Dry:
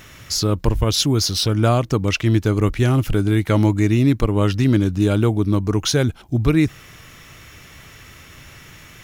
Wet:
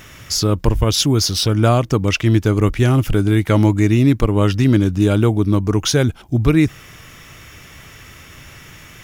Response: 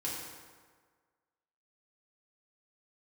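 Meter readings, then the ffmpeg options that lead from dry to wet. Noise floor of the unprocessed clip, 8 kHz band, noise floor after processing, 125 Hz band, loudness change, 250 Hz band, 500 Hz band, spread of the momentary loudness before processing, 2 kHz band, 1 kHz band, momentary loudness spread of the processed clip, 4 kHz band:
−44 dBFS, +2.5 dB, −42 dBFS, +2.5 dB, +2.5 dB, +2.5 dB, +2.5 dB, 4 LU, +2.5 dB, +2.5 dB, 4 LU, +1.5 dB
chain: -af "bandreject=frequency=4100:width=15,volume=2.5dB"

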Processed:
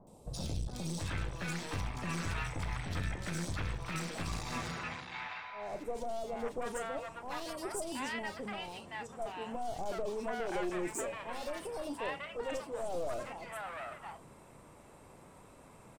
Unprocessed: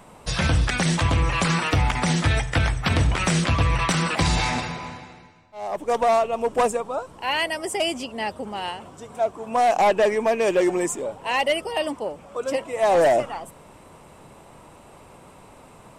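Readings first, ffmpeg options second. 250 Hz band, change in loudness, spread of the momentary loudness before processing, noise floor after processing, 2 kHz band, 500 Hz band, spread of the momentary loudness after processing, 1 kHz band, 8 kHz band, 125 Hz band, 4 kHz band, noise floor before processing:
−14.5 dB, −16.5 dB, 12 LU, −57 dBFS, −15.0 dB, −16.5 dB, 12 LU, −17.0 dB, −13.5 dB, −16.5 dB, −17.0 dB, −48 dBFS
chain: -filter_complex "[0:a]bandreject=frequency=2900:width=17,asplit=2[link_01][link_02];[link_02]adelay=34,volume=-13dB[link_03];[link_01][link_03]amix=inputs=2:normalize=0,aeval=exprs='clip(val(0),-1,0.0398)':channel_layout=same,alimiter=limit=-18dB:level=0:latency=1:release=126,acrossover=split=810|3500[link_04][link_05][link_06];[link_06]adelay=70[link_07];[link_05]adelay=730[link_08];[link_04][link_08][link_07]amix=inputs=3:normalize=0,volume=-8dB"

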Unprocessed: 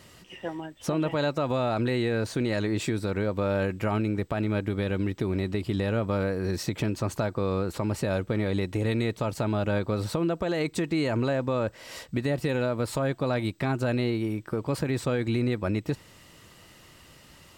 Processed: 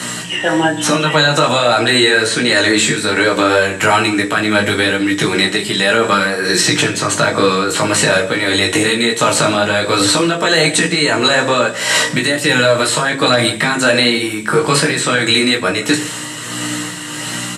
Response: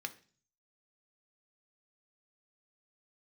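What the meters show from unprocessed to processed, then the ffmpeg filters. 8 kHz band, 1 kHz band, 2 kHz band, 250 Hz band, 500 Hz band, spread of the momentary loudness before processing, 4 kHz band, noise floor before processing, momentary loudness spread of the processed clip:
+26.5 dB, +18.5 dB, +23.0 dB, +11.0 dB, +13.0 dB, 4 LU, +26.0 dB, −53 dBFS, 5 LU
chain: -filter_complex "[0:a]equalizer=frequency=3100:width_type=o:width=2.8:gain=-7,aeval=exprs='val(0)+0.00631*(sin(2*PI*60*n/s)+sin(2*PI*2*60*n/s)/2+sin(2*PI*3*60*n/s)/3+sin(2*PI*4*60*n/s)/4+sin(2*PI*5*60*n/s)/5)':channel_layout=same,acrossover=split=1700|4600[link_01][link_02][link_03];[link_01]acompressor=threshold=-37dB:ratio=4[link_04];[link_02]acompressor=threshold=-50dB:ratio=4[link_05];[link_03]acompressor=threshold=-56dB:ratio=4[link_06];[link_04][link_05][link_06]amix=inputs=3:normalize=0,highpass=frequency=160:width=0.5412,highpass=frequency=160:width=1.3066,equalizer=frequency=200:width_type=q:width=4:gain=-6,equalizer=frequency=1700:width_type=q:width=4:gain=7,equalizer=frequency=7800:width_type=q:width=4:gain=3,lowpass=frequency=9400:width=0.5412,lowpass=frequency=9400:width=1.3066,flanger=delay=5:depth=8.3:regen=-56:speed=0.17:shape=sinusoidal,tremolo=f=1.5:d=0.43,acrossover=split=550|900[link_07][link_08][link_09];[link_09]crystalizer=i=5:c=0[link_10];[link_07][link_08][link_10]amix=inputs=3:normalize=0,flanger=delay=16.5:depth=3:speed=1.2,asplit=2[link_11][link_12];[link_12]adelay=163.3,volume=-21dB,highshelf=frequency=4000:gain=-3.67[link_13];[link_11][link_13]amix=inputs=2:normalize=0[link_14];[1:a]atrim=start_sample=2205,atrim=end_sample=4410,asetrate=24696,aresample=44100[link_15];[link_14][link_15]afir=irnorm=-1:irlink=0,acontrast=85,alimiter=level_in=26.5dB:limit=-1dB:release=50:level=0:latency=1,volume=-1dB"

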